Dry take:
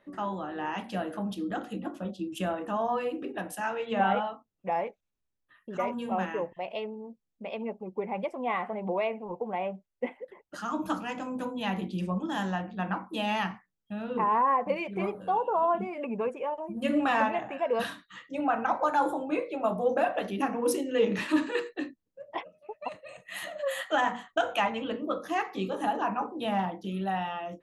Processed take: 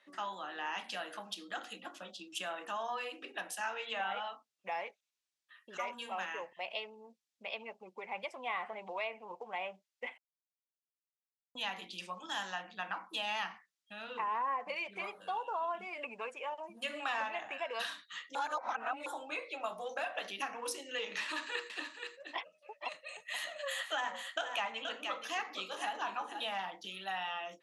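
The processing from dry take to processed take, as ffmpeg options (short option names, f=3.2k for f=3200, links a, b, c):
-filter_complex "[0:a]asettb=1/sr,asplit=3[a][b][c];[a]atrim=end=21.224[d];[b]atrim=start=21.22:end=26.44,asetpts=PTS-STARTPTS,afade=t=in:d=0.004:c=qsin,afade=t=out:st=5.216:d=0.004:c=qsin,aecho=1:1:476:0.299,atrim=end_sample=230202[e];[c]atrim=start=26.436[f];[d][e]acrossfade=d=0.004:c1=hsin:c2=qsin[g];[g][f]acrossfade=d=0.004:c1=qsin:c2=hsin,asplit=5[h][i][j][k][l];[h]atrim=end=10.18,asetpts=PTS-STARTPTS,afade=t=out:st=10.176:d=0.004:c=hsin[m];[i]atrim=start=10.18:end=11.55,asetpts=PTS-STARTPTS,volume=0[n];[j]atrim=start=11.55:end=18.352,asetpts=PTS-STARTPTS,afade=t=in:d=0.004:c=hsin[o];[k]atrim=start=18.348:end=19.062,asetpts=PTS-STARTPTS,areverse[p];[l]atrim=start=19.058[q];[m][n][o]concat=n=3:v=0:a=1[r];[r][p]acrossfade=d=0.004:c1=hsin:c2=hsin[s];[s][q]acrossfade=d=0.004:c1=hsin:c2=hsin,acrossover=split=580|1300[t][u][v];[t]acompressor=threshold=-38dB:ratio=4[w];[u]acompressor=threshold=-33dB:ratio=4[x];[v]acompressor=threshold=-42dB:ratio=4[y];[w][x][y]amix=inputs=3:normalize=0,lowpass=5.1k,aderivative,volume=13dB"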